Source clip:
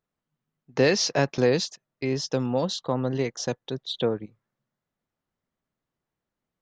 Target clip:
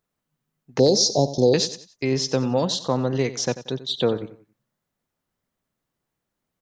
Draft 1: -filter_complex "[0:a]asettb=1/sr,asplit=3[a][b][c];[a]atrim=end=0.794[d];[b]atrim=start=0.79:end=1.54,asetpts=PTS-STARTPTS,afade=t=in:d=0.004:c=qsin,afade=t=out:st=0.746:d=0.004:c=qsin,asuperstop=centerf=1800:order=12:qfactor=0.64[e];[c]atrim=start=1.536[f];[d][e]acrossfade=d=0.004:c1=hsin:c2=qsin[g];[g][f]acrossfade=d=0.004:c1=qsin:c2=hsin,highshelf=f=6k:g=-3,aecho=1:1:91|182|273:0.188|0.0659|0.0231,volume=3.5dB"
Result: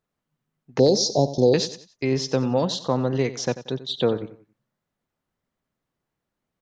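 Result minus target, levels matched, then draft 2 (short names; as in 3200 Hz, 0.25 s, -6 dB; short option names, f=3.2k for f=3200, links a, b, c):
8000 Hz band -4.0 dB
-filter_complex "[0:a]asettb=1/sr,asplit=3[a][b][c];[a]atrim=end=0.794[d];[b]atrim=start=0.79:end=1.54,asetpts=PTS-STARTPTS,afade=t=in:d=0.004:c=qsin,afade=t=out:st=0.746:d=0.004:c=qsin,asuperstop=centerf=1800:order=12:qfactor=0.64[e];[c]atrim=start=1.536[f];[d][e]acrossfade=d=0.004:c1=hsin:c2=qsin[g];[g][f]acrossfade=d=0.004:c1=qsin:c2=hsin,highshelf=f=6k:g=6,aecho=1:1:91|182|273:0.188|0.0659|0.0231,volume=3.5dB"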